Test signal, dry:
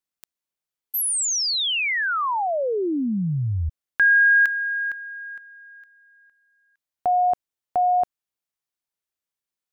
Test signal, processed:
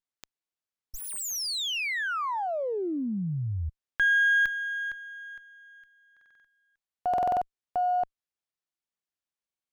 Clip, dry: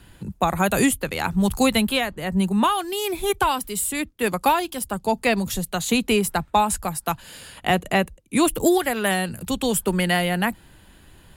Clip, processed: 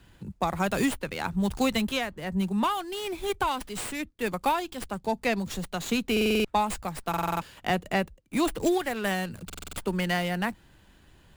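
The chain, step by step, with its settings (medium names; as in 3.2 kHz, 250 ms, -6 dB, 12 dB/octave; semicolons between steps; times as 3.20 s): buffer glitch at 6.12/7.09/9.45 s, samples 2048, times 6; sliding maximum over 3 samples; trim -6.5 dB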